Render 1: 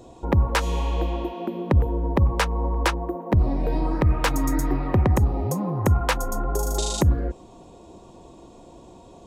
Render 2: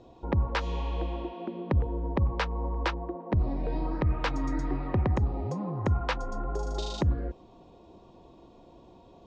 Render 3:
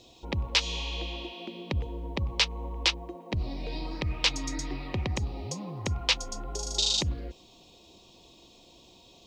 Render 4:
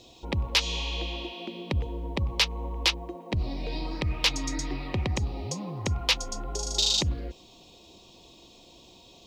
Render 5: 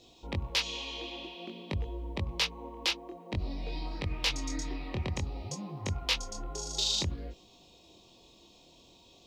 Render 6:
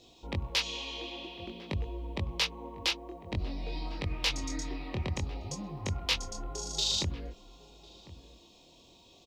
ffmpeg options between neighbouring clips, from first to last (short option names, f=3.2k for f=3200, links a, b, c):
-af "lowpass=f=5k:w=0.5412,lowpass=f=5k:w=1.3066,volume=-7dB"
-af "aexciter=amount=10.7:drive=3.7:freq=2.3k,volume=-5dB"
-af "asoftclip=type=tanh:threshold=-14dB,volume=2.5dB"
-af "flanger=delay=20:depth=6:speed=0.53,volume=-2.5dB"
-filter_complex "[0:a]asplit=2[a][b];[b]adelay=1050,volume=-16dB,highshelf=f=4k:g=-23.6[c];[a][c]amix=inputs=2:normalize=0"